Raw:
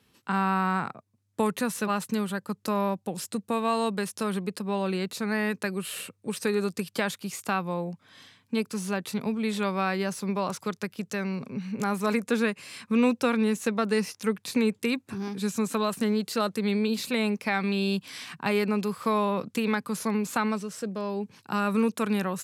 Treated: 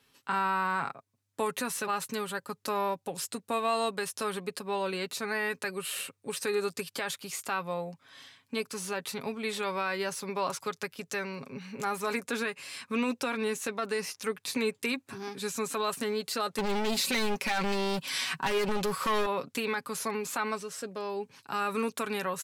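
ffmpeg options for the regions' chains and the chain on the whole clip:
ffmpeg -i in.wav -filter_complex "[0:a]asettb=1/sr,asplit=3[link_01][link_02][link_03];[link_01]atrim=end=16.584[link_04];[link_02]atrim=start=16.58:end=19.26,asetpts=PTS-STARTPTS,afade=type=in:duration=0.004:curve=qsin,afade=type=out:start_time=2.676:duration=0.004:curve=qsin,aecho=1:1:5.3:0.41,atrim=end_sample=118188,acontrast=84,asoftclip=type=hard:threshold=-19dB[link_05];[link_03]atrim=start=19.256[link_06];[link_04][link_05]acrossfade=duration=0.004:curve1=hsin:curve2=qsin[link_07];[link_07][link_06]acrossfade=duration=0.004:curve1=qsin:curve2=hsin,equalizer=frequency=140:width=0.41:gain=-9,aecho=1:1:7.3:0.46,alimiter=limit=-19.5dB:level=0:latency=1:release=45" out.wav

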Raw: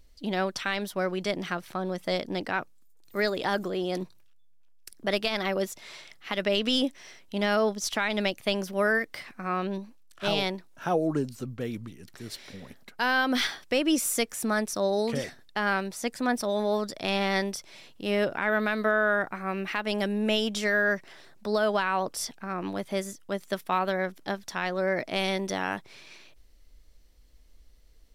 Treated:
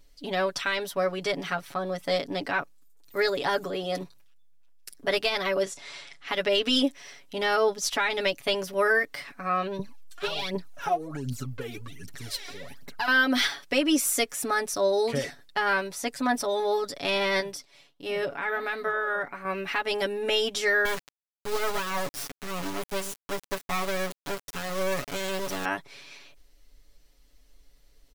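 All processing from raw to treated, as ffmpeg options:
ffmpeg -i in.wav -filter_complex "[0:a]asettb=1/sr,asplit=3[link_01][link_02][link_03];[link_01]atrim=end=5.634[link_04];[link_02]atrim=start=5.63:end=6.28,asetpts=PTS-STARTPTS,afade=type=in:duration=0.004:curve=qsin,afade=type=out:start_time=0.646:duration=0.004:curve=qsin,lowpass=frequency=9500:width=0.5412,lowpass=frequency=9500:width=1.3066,asplit=2[link_05][link_06];[link_06]adelay=31,volume=-12dB[link_07];[link_05][link_07]amix=inputs=2:normalize=0,atrim=end_sample=28665[link_08];[link_03]atrim=start=6.276[link_09];[link_04][link_08]acrossfade=duration=0.004:curve1=hsin:curve2=qsin[link_10];[link_10][link_09]acrossfade=duration=0.004:curve1=qsin:curve2=hsin,asettb=1/sr,asplit=3[link_11][link_12][link_13];[link_11]atrim=end=9.794[link_14];[link_12]atrim=start=9.79:end=13.08,asetpts=PTS-STARTPTS,afade=type=in:duration=0.004:curve=qsin,afade=type=out:start_time=3.286:duration=0.004:curve=qsin,acompressor=threshold=-30dB:ratio=12:attack=3.2:release=140:knee=1:detection=peak,aphaser=in_gain=1:out_gain=1:delay=2.9:decay=0.76:speed=1.3:type=triangular[link_15];[link_13]atrim=start=13.076[link_16];[link_14][link_15]acrossfade=duration=0.004:curve1=hsin:curve2=qsin[link_17];[link_17][link_16]acrossfade=duration=0.004:curve1=qsin:curve2=hsin,asettb=1/sr,asplit=3[link_18][link_19][link_20];[link_18]atrim=end=17.404[link_21];[link_19]atrim=start=17.4:end=19.45,asetpts=PTS-STARTPTS,afade=type=in:duration=0.004:curve=qsin,afade=type=out:start_time=2.046:duration=0.004:curve=qsin,agate=range=-33dB:threshold=-45dB:ratio=3:release=100:detection=peak,flanger=delay=1.9:depth=6.4:regen=-89:speed=1.4:shape=triangular[link_22];[link_20]atrim=start=19.446[link_23];[link_21][link_22]acrossfade=duration=0.004:curve1=hsin:curve2=qsin[link_24];[link_24][link_23]acrossfade=duration=0.004:curve1=qsin:curve2=hsin,asettb=1/sr,asplit=3[link_25][link_26][link_27];[link_25]atrim=end=20.854[link_28];[link_26]atrim=start=20.85:end=25.65,asetpts=PTS-STARTPTS,afade=type=in:duration=0.004:curve=qsin,afade=type=out:start_time=4.796:duration=0.004:curve=qsin,lowshelf=frequency=110:gain=11.5,acrusher=bits=3:dc=4:mix=0:aa=0.000001[link_29];[link_27]atrim=start=25.646[link_30];[link_28][link_29]acrossfade=duration=0.004:curve1=hsin:curve2=qsin[link_31];[link_31][link_30]acrossfade=duration=0.004:curve1=qsin:curve2=hsin,lowshelf=frequency=270:gain=-4.5,aecho=1:1:7.1:0.89" out.wav

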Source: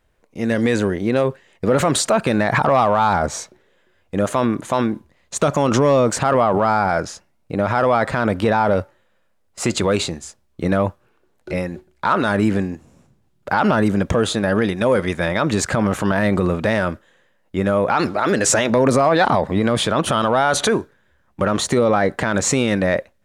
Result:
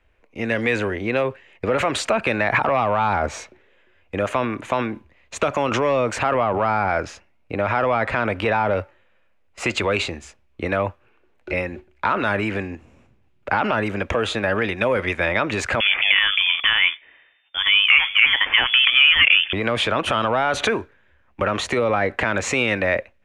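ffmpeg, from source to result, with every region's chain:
ffmpeg -i in.wav -filter_complex "[0:a]asettb=1/sr,asplit=3[link_01][link_02][link_03];[link_01]atrim=end=15.804[link_04];[link_02]atrim=start=15.8:end=19.53,asetpts=PTS-STARTPTS,afade=type=in:duration=0.004:curve=qsin,afade=type=out:start_time=3.726:duration=0.004:curve=qsin,tiltshelf=frequency=810:gain=-6,lowpass=frequency=3100:width_type=q:width=0.5098,lowpass=frequency=3100:width_type=q:width=0.6013,lowpass=frequency=3100:width_type=q:width=0.9,lowpass=frequency=3100:width_type=q:width=2.563,afreqshift=-3600[link_05];[link_03]atrim=start=19.526[link_06];[link_04][link_05]acrossfade=duration=0.004:curve1=hsin:curve2=qsin[link_07];[link_07][link_06]acrossfade=duration=0.004:curve1=qsin:curve2=hsin,bass=frequency=250:gain=3,treble=frequency=4000:gain=-13,acrossover=split=200|430[link_08][link_09][link_10];[link_08]acompressor=threshold=-26dB:ratio=4[link_11];[link_09]acompressor=threshold=-30dB:ratio=4[link_12];[link_10]acompressor=threshold=-18dB:ratio=4[link_13];[link_11][link_12][link_13]amix=inputs=3:normalize=0,equalizer=frequency=160:width_type=o:width=0.67:gain=-11,equalizer=frequency=2500:width_type=o:width=0.67:gain=10,equalizer=frequency=6300:width_type=o:width=0.67:gain=3" out.wav

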